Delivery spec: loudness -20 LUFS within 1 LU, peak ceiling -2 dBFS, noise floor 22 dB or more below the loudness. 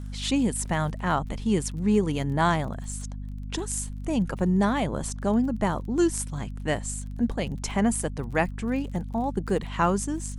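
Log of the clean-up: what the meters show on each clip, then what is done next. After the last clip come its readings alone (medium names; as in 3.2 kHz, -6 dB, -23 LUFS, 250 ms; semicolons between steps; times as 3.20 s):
tick rate 23 per s; hum 50 Hz; highest harmonic 250 Hz; hum level -33 dBFS; loudness -27.0 LUFS; peak level -9.5 dBFS; loudness target -20.0 LUFS
-> de-click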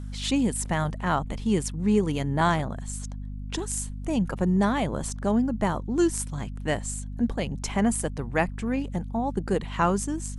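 tick rate 0 per s; hum 50 Hz; highest harmonic 250 Hz; hum level -33 dBFS
-> hum notches 50/100/150/200/250 Hz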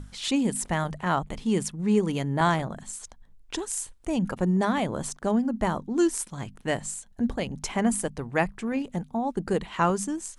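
hum not found; loudness -27.5 LUFS; peak level -10.0 dBFS; loudness target -20.0 LUFS
-> trim +7.5 dB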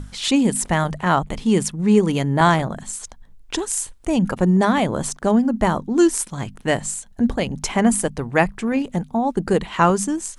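loudness -20.0 LUFS; peak level -2.5 dBFS; noise floor -45 dBFS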